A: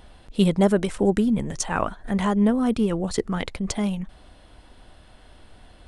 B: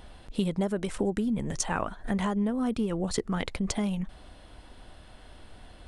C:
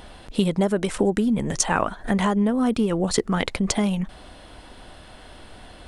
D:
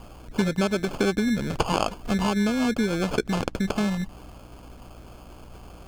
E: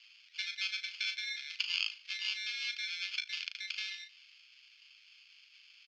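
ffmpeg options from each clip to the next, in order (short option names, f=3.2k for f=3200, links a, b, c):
-af "acompressor=threshold=-25dB:ratio=6"
-af "lowshelf=f=130:g=-6.5,volume=8.5dB"
-filter_complex "[0:a]acrusher=samples=23:mix=1:aa=0.000001,acrossover=split=8700[a][b];[b]acompressor=threshold=-47dB:ratio=4:attack=1:release=60[c];[a][c]amix=inputs=2:normalize=0,aeval=exprs='val(0)+0.00631*(sin(2*PI*60*n/s)+sin(2*PI*2*60*n/s)/2+sin(2*PI*3*60*n/s)/3+sin(2*PI*4*60*n/s)/4+sin(2*PI*5*60*n/s)/5)':c=same,volume=-2.5dB"
-filter_complex "[0:a]asuperpass=centerf=3400:order=8:qfactor=1,asplit=2[a][b];[b]adelay=37,volume=-8.5dB[c];[a][c]amix=inputs=2:normalize=0,aecho=1:1:75|150|225:0.075|0.0345|0.0159"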